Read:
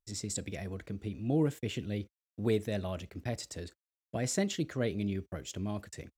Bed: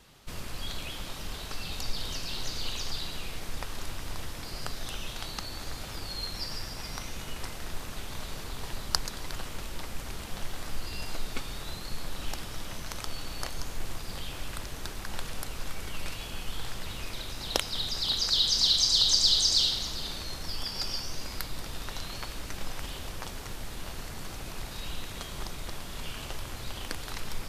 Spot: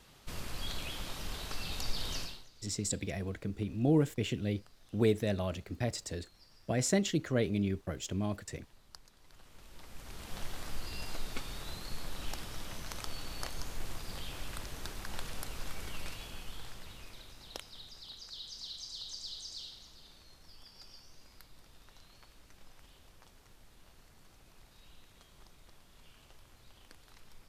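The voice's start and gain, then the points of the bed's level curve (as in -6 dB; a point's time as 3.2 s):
2.55 s, +2.0 dB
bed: 2.22 s -2.5 dB
2.49 s -25.5 dB
9.16 s -25.5 dB
10.37 s -4.5 dB
15.89 s -4.5 dB
18.2 s -21 dB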